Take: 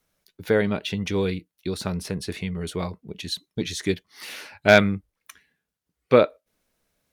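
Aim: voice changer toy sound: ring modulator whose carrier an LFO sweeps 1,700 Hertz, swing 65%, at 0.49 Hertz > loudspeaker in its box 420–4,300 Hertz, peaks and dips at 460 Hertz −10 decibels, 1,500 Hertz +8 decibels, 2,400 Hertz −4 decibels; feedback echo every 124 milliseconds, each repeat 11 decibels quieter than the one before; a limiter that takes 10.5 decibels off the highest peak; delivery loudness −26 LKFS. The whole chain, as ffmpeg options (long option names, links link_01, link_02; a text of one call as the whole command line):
ffmpeg -i in.wav -af "alimiter=limit=-12.5dB:level=0:latency=1,aecho=1:1:124|248|372:0.282|0.0789|0.0221,aeval=exprs='val(0)*sin(2*PI*1700*n/s+1700*0.65/0.49*sin(2*PI*0.49*n/s))':channel_layout=same,highpass=420,equalizer=frequency=460:width_type=q:width=4:gain=-10,equalizer=frequency=1500:width_type=q:width=4:gain=8,equalizer=frequency=2400:width_type=q:width=4:gain=-4,lowpass=frequency=4300:width=0.5412,lowpass=frequency=4300:width=1.3066,volume=2.5dB" out.wav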